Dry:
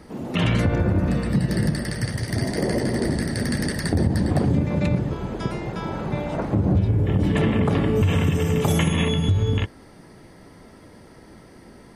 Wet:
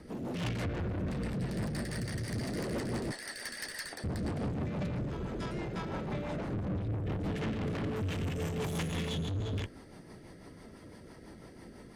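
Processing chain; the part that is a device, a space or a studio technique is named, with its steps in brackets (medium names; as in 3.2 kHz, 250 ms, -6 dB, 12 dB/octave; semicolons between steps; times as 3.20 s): 3.11–4.04 s: high-pass 1.1 kHz 12 dB/octave; overdriven rotary cabinet (valve stage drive 29 dB, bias 0.25; rotary cabinet horn 6 Hz); trim -2 dB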